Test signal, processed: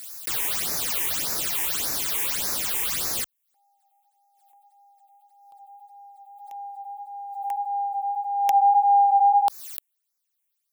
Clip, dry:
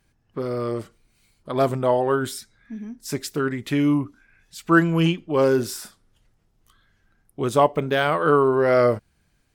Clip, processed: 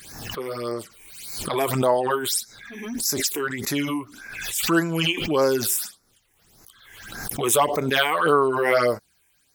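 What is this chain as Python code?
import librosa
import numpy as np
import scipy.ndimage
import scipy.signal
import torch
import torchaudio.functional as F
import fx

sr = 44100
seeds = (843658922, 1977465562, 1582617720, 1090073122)

y = fx.tilt_eq(x, sr, slope=3.5)
y = fx.phaser_stages(y, sr, stages=8, low_hz=170.0, high_hz=3200.0, hz=1.7, feedback_pct=0)
y = fx.pre_swell(y, sr, db_per_s=46.0)
y = y * 10.0 ** (2.5 / 20.0)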